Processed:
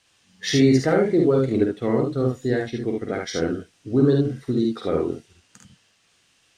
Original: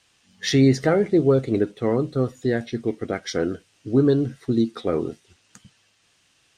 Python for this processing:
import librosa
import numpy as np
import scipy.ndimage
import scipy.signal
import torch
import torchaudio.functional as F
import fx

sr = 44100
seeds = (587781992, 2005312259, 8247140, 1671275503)

y = fx.room_early_taps(x, sr, ms=(49, 72), db=(-4.0, -3.5))
y = y * 10.0 ** (-2.0 / 20.0)